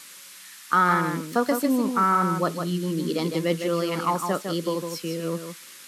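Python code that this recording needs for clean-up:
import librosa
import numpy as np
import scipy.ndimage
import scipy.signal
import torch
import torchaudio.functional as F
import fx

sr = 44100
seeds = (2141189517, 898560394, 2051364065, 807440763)

y = fx.noise_reduce(x, sr, print_start_s=0.19, print_end_s=0.69, reduce_db=24.0)
y = fx.fix_echo_inverse(y, sr, delay_ms=156, level_db=-6.5)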